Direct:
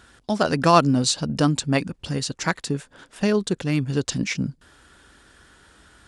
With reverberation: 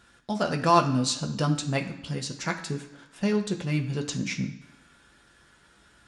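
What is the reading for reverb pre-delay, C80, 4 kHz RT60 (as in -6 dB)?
3 ms, 13.0 dB, 1.0 s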